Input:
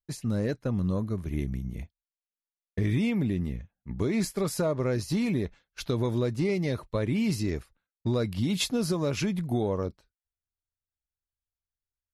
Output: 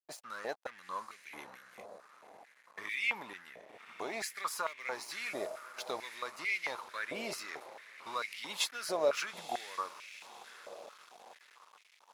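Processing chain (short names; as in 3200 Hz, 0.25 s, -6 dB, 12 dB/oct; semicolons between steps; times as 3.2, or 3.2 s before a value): diffused feedback echo 0.929 s, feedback 56%, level -13 dB; crossover distortion -46.5 dBFS; stepped high-pass 4.5 Hz 640–2200 Hz; gain -3.5 dB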